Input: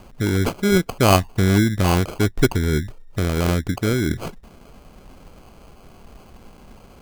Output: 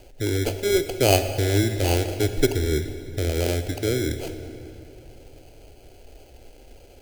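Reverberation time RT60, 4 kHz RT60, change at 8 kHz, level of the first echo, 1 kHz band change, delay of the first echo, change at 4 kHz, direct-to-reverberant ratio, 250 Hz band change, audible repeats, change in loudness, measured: 2.9 s, 2.0 s, 0.0 dB, no echo audible, −7.0 dB, no echo audible, −1.0 dB, 8.5 dB, −6.5 dB, no echo audible, −3.5 dB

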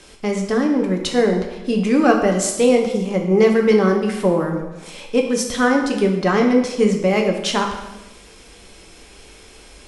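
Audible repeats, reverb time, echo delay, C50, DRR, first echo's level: no echo audible, 1.0 s, no echo audible, 6.0 dB, 1.5 dB, no echo audible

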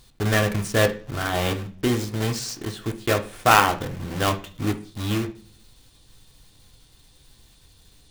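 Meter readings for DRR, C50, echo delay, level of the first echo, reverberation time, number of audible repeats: 3.5 dB, 14.5 dB, no echo audible, no echo audible, 0.50 s, no echo audible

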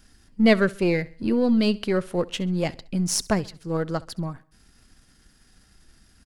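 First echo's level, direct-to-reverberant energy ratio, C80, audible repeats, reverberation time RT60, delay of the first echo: −22.0 dB, no reverb audible, no reverb audible, 2, no reverb audible, 67 ms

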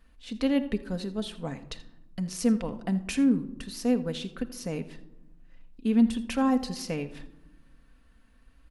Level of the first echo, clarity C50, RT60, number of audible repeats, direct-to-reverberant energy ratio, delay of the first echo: −18.5 dB, 14.0 dB, 1.0 s, 1, 6.0 dB, 82 ms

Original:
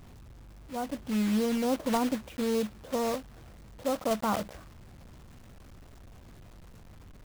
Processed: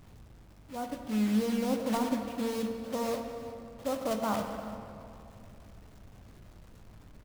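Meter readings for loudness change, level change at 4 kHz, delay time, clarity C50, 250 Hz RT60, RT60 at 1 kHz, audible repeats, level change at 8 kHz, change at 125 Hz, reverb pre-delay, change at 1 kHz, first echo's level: −2.0 dB, −2.5 dB, 351 ms, 5.5 dB, 3.2 s, 2.6 s, 1, −3.0 dB, −0.5 dB, 3 ms, −2.0 dB, −18.5 dB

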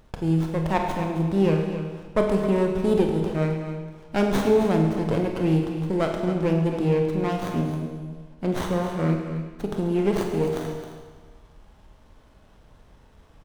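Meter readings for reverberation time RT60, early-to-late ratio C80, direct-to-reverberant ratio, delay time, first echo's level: 1.4 s, 4.0 dB, 1.0 dB, 266 ms, −10.5 dB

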